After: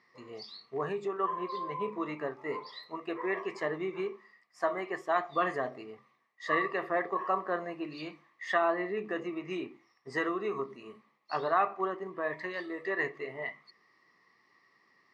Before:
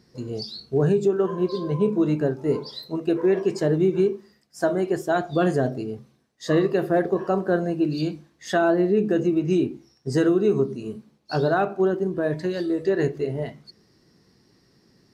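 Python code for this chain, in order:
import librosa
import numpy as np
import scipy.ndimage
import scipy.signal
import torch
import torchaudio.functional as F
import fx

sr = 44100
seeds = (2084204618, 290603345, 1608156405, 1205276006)

y = fx.double_bandpass(x, sr, hz=1500.0, octaves=0.74)
y = F.gain(torch.from_numpy(y), 8.5).numpy()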